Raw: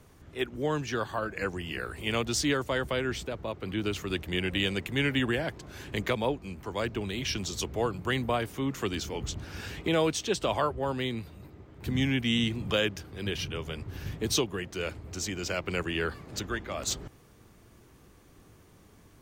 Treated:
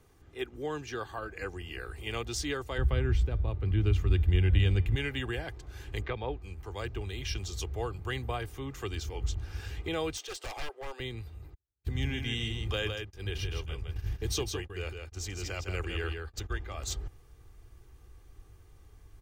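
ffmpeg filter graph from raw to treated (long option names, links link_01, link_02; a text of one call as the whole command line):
ffmpeg -i in.wav -filter_complex "[0:a]asettb=1/sr,asplit=3[link_01][link_02][link_03];[link_01]atrim=end=2.784[link_04];[link_02]atrim=start=2.78:end=4.96,asetpts=PTS-STARTPTS,afade=type=in:duration=0.004:curve=qsin,afade=type=out:start_time=2.176:duration=0.004:curve=qsin,bass=frequency=250:gain=14,treble=frequency=4000:gain=-7,bandreject=frequency=298.1:width_type=h:width=4,bandreject=frequency=596.2:width_type=h:width=4,bandreject=frequency=894.3:width_type=h:width=4,bandreject=frequency=1192.4:width_type=h:width=4,bandreject=frequency=1490.5:width_type=h:width=4,bandreject=frequency=1788.6:width_type=h:width=4,bandreject=frequency=2086.7:width_type=h:width=4,bandreject=frequency=2384.8:width_type=h:width=4,bandreject=frequency=2682.9:width_type=h:width=4,bandreject=frequency=2981:width_type=h:width=4,bandreject=frequency=3279.1:width_type=h:width=4,bandreject=frequency=3577.2:width_type=h:width=4,bandreject=frequency=3875.3:width_type=h:width=4,bandreject=frequency=4173.4:width_type=h:width=4,bandreject=frequency=4471.5:width_type=h:width=4,bandreject=frequency=4769.6:width_type=h:width=4,bandreject=frequency=5067.7:width_type=h:width=4,bandreject=frequency=5365.8:width_type=h:width=4,bandreject=frequency=5663.9:width_type=h:width=4,bandreject=frequency=5962:width_type=h:width=4[link_05];[link_03]atrim=start=4.956[link_06];[link_04][link_05]acrossfade=duration=0.004:curve1=hsin:curve2=qsin[link_07];[link_07][link_06]acrossfade=duration=0.004:curve1=qsin:curve2=hsin,asettb=1/sr,asplit=3[link_08][link_09][link_10];[link_08]atrim=end=6.014[link_11];[link_09]atrim=start=6.01:end=6.41,asetpts=PTS-STARTPTS,afade=type=in:duration=0.004:curve=qsin,afade=type=out:start_time=0.396:duration=0.004:curve=qsin,acrossover=split=3000[link_12][link_13];[link_13]acompressor=threshold=-48dB:ratio=4:attack=1:release=60[link_14];[link_12][link_14]amix=inputs=2:normalize=0,lowpass=frequency=4700:width=0.5412,lowpass=frequency=4700:width=1.3066[link_15];[link_10]atrim=start=6.406[link_16];[link_11][link_15]acrossfade=duration=0.004:curve1=hsin:curve2=qsin[link_17];[link_17][link_16]acrossfade=duration=0.004:curve1=qsin:curve2=hsin,asettb=1/sr,asplit=3[link_18][link_19][link_20];[link_18]atrim=end=10.174[link_21];[link_19]atrim=start=10.17:end=11,asetpts=PTS-STARTPTS,afade=type=in:duration=0.004:curve=qsin,afade=type=out:start_time=0.826:duration=0.004:curve=qsin,highpass=frequency=420:width=0.5412,highpass=frequency=420:width=1.3066,aeval=exprs='0.0398*(abs(mod(val(0)/0.0398+3,4)-2)-1)':channel_layout=same[link_22];[link_20]atrim=start=10.996[link_23];[link_21][link_22]acrossfade=duration=0.004:curve1=hsin:curve2=qsin[link_24];[link_24][link_23]acrossfade=duration=0.004:curve1=qsin:curve2=hsin,asettb=1/sr,asplit=3[link_25][link_26][link_27];[link_25]atrim=end=11.544[link_28];[link_26]atrim=start=11.54:end=16.53,asetpts=PTS-STARTPTS,afade=type=in:duration=0.004:curve=qsin,afade=type=out:start_time=4.986:duration=0.004:curve=qsin,agate=range=-44dB:threshold=-40dB:ratio=16:release=100:detection=peak,aecho=1:1:160:0.531,atrim=end_sample=220059[link_29];[link_27]atrim=start=16.526[link_30];[link_28][link_29]acrossfade=duration=0.004:curve1=hsin:curve2=qsin[link_31];[link_31][link_30]acrossfade=duration=0.004:curve1=qsin:curve2=hsin,aecho=1:1:2.5:0.4,asubboost=boost=7:cutoff=75,volume=-6.5dB" out.wav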